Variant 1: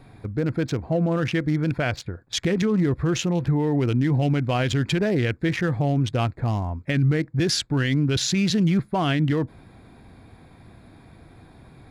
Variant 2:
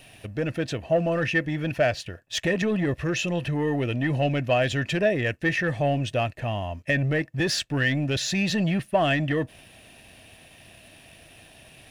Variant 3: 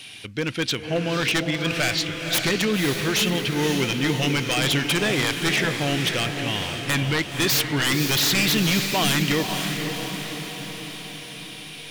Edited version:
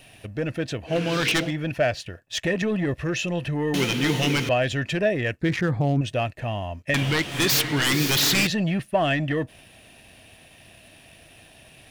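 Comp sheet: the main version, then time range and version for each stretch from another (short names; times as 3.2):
2
0.9–1.49 from 3, crossfade 0.10 s
3.74–4.49 from 3
5.41–6.01 from 1
6.94–8.47 from 3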